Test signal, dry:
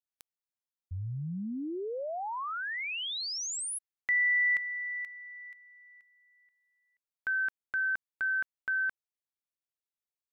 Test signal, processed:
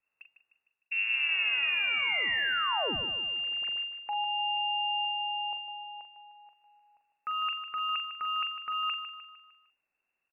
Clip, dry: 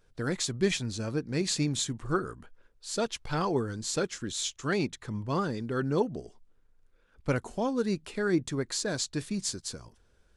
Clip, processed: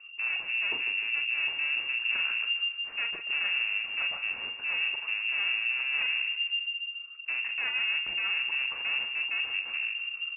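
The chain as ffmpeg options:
ffmpeg -i in.wav -filter_complex "[0:a]apsyclip=16dB,lowshelf=frequency=240:width_type=q:width=1.5:gain=13.5,areverse,acompressor=threshold=-15dB:ratio=8:attack=1.2:release=409:knee=6:detection=rms,areverse,aeval=exprs='(tanh(35.5*val(0)+0.45)-tanh(0.45))/35.5':channel_layout=same,asplit=2[link_01][link_02];[link_02]adelay=42,volume=-8dB[link_03];[link_01][link_03]amix=inputs=2:normalize=0,bandreject=frequency=270.5:width_type=h:width=4,bandreject=frequency=541:width_type=h:width=4,bandreject=frequency=811.5:width_type=h:width=4,asplit=2[link_04][link_05];[link_05]aecho=0:1:152|304|456|608|760:0.299|0.146|0.0717|0.0351|0.0172[link_06];[link_04][link_06]amix=inputs=2:normalize=0,lowpass=frequency=2400:width_type=q:width=0.5098,lowpass=frequency=2400:width_type=q:width=0.6013,lowpass=frequency=2400:width_type=q:width=0.9,lowpass=frequency=2400:width_type=q:width=2.563,afreqshift=-2800" out.wav

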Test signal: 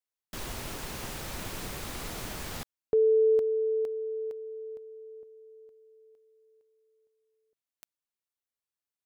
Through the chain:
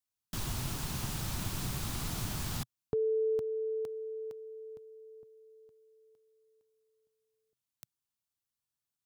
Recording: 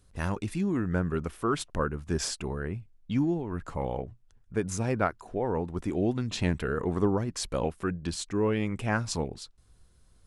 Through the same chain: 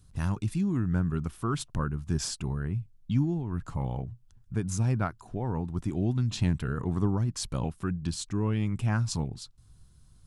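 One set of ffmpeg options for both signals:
ffmpeg -i in.wav -filter_complex "[0:a]equalizer=frequency=125:width_type=o:width=1:gain=8,equalizer=frequency=500:width_type=o:width=1:gain=-10,equalizer=frequency=2000:width_type=o:width=1:gain=-6,asplit=2[link_01][link_02];[link_02]acompressor=threshold=-34dB:ratio=6:release=476:detection=rms,volume=-2.5dB[link_03];[link_01][link_03]amix=inputs=2:normalize=0,volume=-2.5dB" out.wav

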